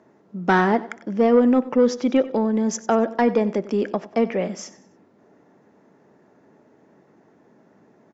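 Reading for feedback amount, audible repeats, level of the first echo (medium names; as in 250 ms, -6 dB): 38%, 3, -17.5 dB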